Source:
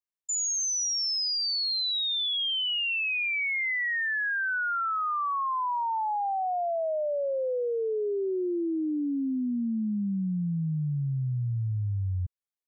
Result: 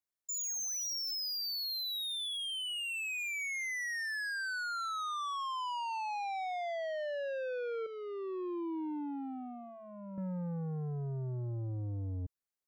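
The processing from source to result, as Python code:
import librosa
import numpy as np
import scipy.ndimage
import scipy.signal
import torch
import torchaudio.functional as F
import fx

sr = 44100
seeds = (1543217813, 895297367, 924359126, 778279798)

y = fx.peak_eq(x, sr, hz=3100.0, db=-5.0, octaves=0.69)
y = 10.0 ** (-36.0 / 20.0) * np.tanh(y / 10.0 ** (-36.0 / 20.0))
y = fx.fixed_phaser(y, sr, hz=330.0, stages=8, at=(7.86, 10.18))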